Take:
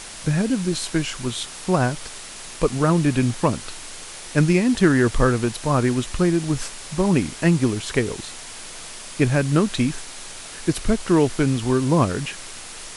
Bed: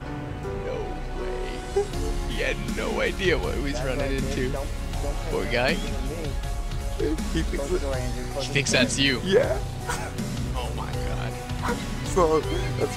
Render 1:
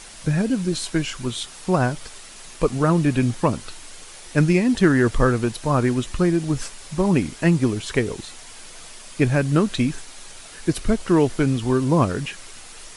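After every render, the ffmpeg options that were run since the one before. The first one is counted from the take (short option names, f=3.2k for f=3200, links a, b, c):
-af "afftdn=nr=6:nf=-37"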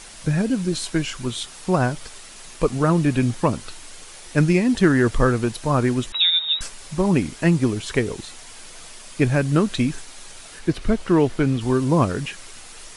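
-filter_complex "[0:a]asettb=1/sr,asplit=3[a][b][c];[a]atrim=end=6.124[d];[b]atrim=start=6.12:end=6.61,asetpts=PTS-STARTPTS,afade=t=in:d=0.004:c=qsin,afade=t=out:st=0.486:d=0.004:c=qsin,lowpass=f=3.3k:t=q:w=0.5098,lowpass=f=3.3k:t=q:w=0.6013,lowpass=f=3.3k:t=q:w=0.9,lowpass=f=3.3k:t=q:w=2.563,afreqshift=-3900[e];[c]atrim=start=6.606[f];[d][e]acrossfade=d=0.004:c1=hsin:c2=qsin[g];[g][f]acrossfade=d=0.004:c1=qsin:c2=hsin,asettb=1/sr,asplit=3[h][i][j];[h]atrim=end=10.594[k];[i]atrim=start=10.59:end=11.61,asetpts=PTS-STARTPTS,afade=t=in:d=0.004:c=qsin,afade=t=out:st=1.016:d=0.004:c=qsin,acrossover=split=4400[l][m];[m]acompressor=threshold=-47dB:ratio=4:attack=1:release=60[n];[l][n]amix=inputs=2:normalize=0[o];[j]atrim=start=11.606[p];[k][o]acrossfade=d=0.004:c1=hsin:c2=qsin[q];[q][p]acrossfade=d=0.004:c1=qsin:c2=hsin"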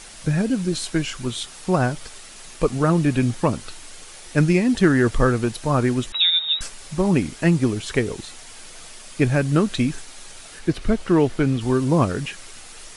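-af "bandreject=f=1k:w=22"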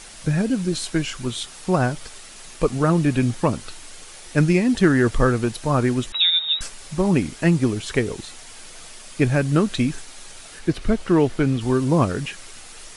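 -af anull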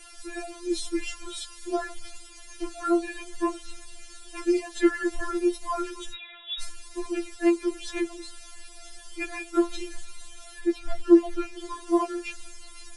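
-af "flanger=delay=7.8:depth=5.3:regen=63:speed=0.17:shape=triangular,afftfilt=real='re*4*eq(mod(b,16),0)':imag='im*4*eq(mod(b,16),0)':win_size=2048:overlap=0.75"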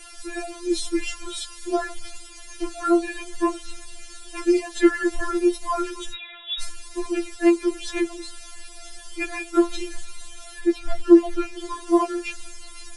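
-af "volume=4.5dB,alimiter=limit=-3dB:level=0:latency=1"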